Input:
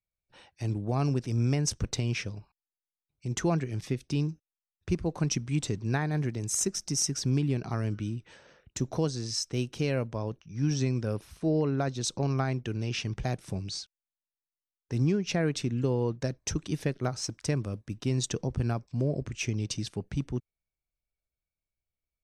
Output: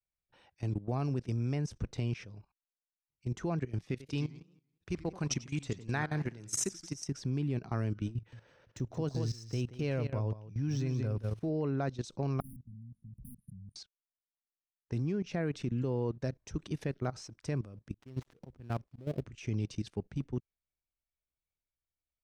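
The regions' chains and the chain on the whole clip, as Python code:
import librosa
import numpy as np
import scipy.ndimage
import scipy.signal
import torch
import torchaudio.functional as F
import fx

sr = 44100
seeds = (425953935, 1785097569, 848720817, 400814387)

y = fx.chain(x, sr, fx.tilt_shelf(db=-4.0, hz=870.0),
    fx.echo_warbled(ms=84, feedback_pct=43, rate_hz=2.8, cents=211, wet_db=-11.5), at=(3.91, 6.95))
y = fx.chain(y, sr, fx.median_filter(points=3),
    fx.peak_eq(hz=110.0, db=8.5, octaves=0.3),
    fx.echo_single(ms=178, db=-7.5), at=(8.15, 11.49))
y = fx.chain(y, sr, fx.level_steps(step_db=15),
    fx.overflow_wrap(gain_db=32.0),
    fx.brickwall_bandstop(low_hz=260.0, high_hz=9000.0), at=(12.4, 13.76))
y = fx.chain(y, sr, fx.dead_time(dead_ms=0.18),
    fx.auto_swell(attack_ms=218.0), at=(17.94, 19.25))
y = fx.high_shelf(y, sr, hz=4700.0, db=-9.0)
y = fx.level_steps(y, sr, step_db=16)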